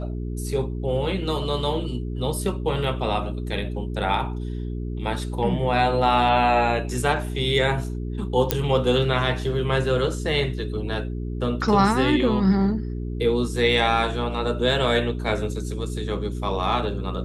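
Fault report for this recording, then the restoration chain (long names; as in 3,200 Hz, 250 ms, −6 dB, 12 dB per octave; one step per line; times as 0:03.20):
mains hum 60 Hz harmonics 7 −29 dBFS
0:08.51: click −2 dBFS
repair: click removal
hum removal 60 Hz, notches 7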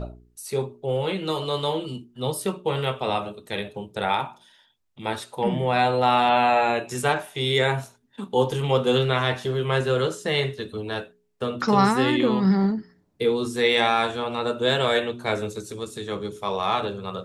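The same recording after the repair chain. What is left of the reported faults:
none of them is left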